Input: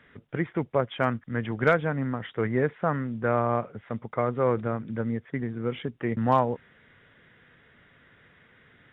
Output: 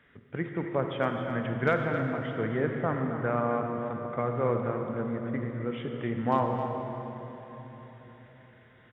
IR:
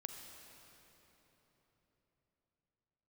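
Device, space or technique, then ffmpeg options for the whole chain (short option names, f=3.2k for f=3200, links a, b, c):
cave: -filter_complex "[0:a]aecho=1:1:265:0.299[a];[1:a]atrim=start_sample=2205[b];[a][b]afir=irnorm=-1:irlink=0"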